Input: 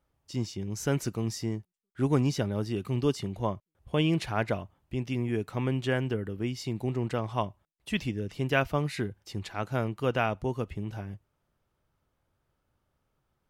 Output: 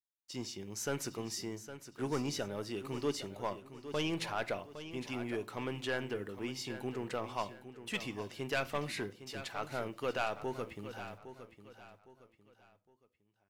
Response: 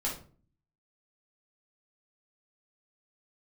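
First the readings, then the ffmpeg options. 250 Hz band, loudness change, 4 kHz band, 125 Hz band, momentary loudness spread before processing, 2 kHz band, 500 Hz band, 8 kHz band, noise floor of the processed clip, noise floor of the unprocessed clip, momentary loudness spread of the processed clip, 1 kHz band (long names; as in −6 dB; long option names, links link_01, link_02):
−9.5 dB, −8.0 dB, −3.0 dB, −15.0 dB, 10 LU, −5.0 dB, −6.5 dB, −1.0 dB, −77 dBFS, −79 dBFS, 11 LU, −5.5 dB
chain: -filter_complex "[0:a]highpass=frequency=550:poles=1,agate=range=-9dB:threshold=-56dB:ratio=16:detection=peak,asoftclip=type=tanh:threshold=-25.5dB,acrusher=bits=11:mix=0:aa=0.000001,aecho=1:1:810|1620|2430:0.251|0.0854|0.029,asplit=2[link_01][link_02];[1:a]atrim=start_sample=2205[link_03];[link_02][link_03]afir=irnorm=-1:irlink=0,volume=-17.5dB[link_04];[link_01][link_04]amix=inputs=2:normalize=0,volume=-2dB"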